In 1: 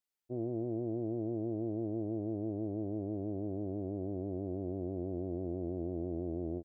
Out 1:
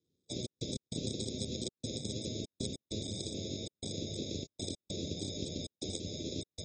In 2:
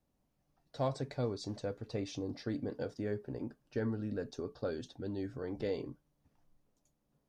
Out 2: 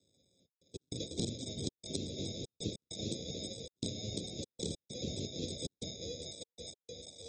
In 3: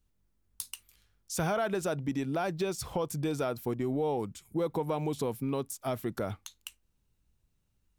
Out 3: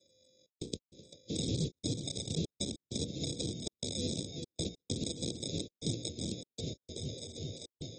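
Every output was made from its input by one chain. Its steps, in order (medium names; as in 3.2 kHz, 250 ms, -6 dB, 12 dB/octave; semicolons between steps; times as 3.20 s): split-band scrambler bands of 500 Hz; feedback echo behind a low-pass 391 ms, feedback 67%, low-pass 3.3 kHz, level -10 dB; sample-and-hold 30×; Chebyshev shaper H 4 -34 dB, 7 -11 dB, 8 -24 dB, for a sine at -19 dBFS; hum notches 60/120/180/240/300/360/420/480 Hz; dynamic bell 400 Hz, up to -6 dB, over -51 dBFS, Q 3.1; high-pass 79 Hz 24 dB/octave; trance gate "xxx.x.xxxxx.x" 98 bpm -60 dB; compression 3:1, threshold -45 dBFS; elliptic band-stop 410–3600 Hz, stop band 60 dB; treble shelf 11 kHz +9 dB; trim +13.5 dB; AAC 24 kbps 32 kHz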